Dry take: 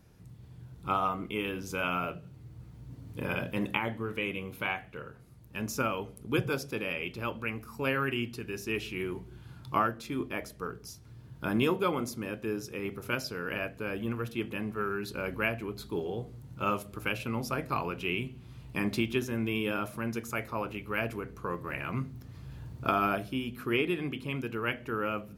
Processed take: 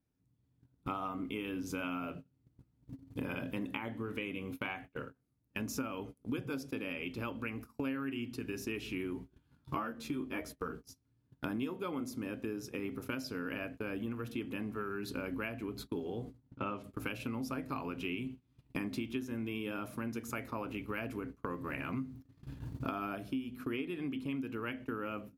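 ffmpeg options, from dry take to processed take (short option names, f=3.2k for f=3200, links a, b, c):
-filter_complex "[0:a]asettb=1/sr,asplit=3[a][b][c];[a]atrim=end=9.274[d];[b]atrim=start=9.27:end=10.83,asetpts=PTS-STARTPTS,afade=t=in:d=0.004:c=qsin,afade=t=out:st=1.556:d=0.004:c=qsin,asplit=2[e][f];[f]adelay=13,volume=-2dB[g];[e][g]amix=inputs=2:normalize=0,atrim=end_sample=68796[h];[c]atrim=start=10.826[i];[d][h]acrossfade=d=0.004:c1=hsin:c2=qsin[j];[j][i]acrossfade=d=0.004:c1=qsin:c2=hsin,asettb=1/sr,asplit=3[k][l][m];[k]atrim=end=16.384[n];[l]atrim=start=16.38:end=16.84,asetpts=PTS-STARTPTS,afade=t=in:d=0.004:c=qsin,afade=t=out:st=0.456:d=0.004:c=qsin,lowpass=3.6k[o];[m]atrim=start=16.836[p];[n][o]acrossfade=d=0.004:c1=hsin:c2=qsin[q];[q][p]acrossfade=d=0.004:c1=qsin:c2=hsin,agate=range=-29dB:threshold=-42dB:ratio=16:detection=peak,equalizer=f=270:t=o:w=0.25:g=14,acompressor=threshold=-40dB:ratio=5,volume=3.5dB"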